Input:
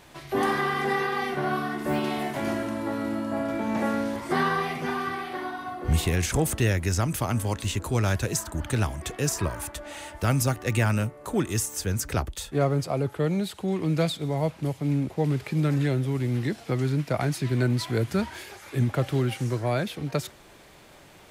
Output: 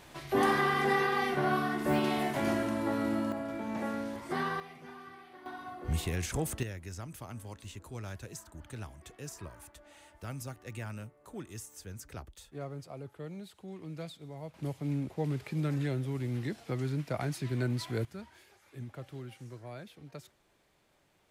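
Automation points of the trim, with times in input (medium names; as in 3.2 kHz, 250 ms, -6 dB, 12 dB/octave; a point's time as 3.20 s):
-2 dB
from 3.32 s -9 dB
from 4.60 s -19.5 dB
from 5.46 s -9 dB
from 6.63 s -17.5 dB
from 14.54 s -8 dB
from 18.05 s -19 dB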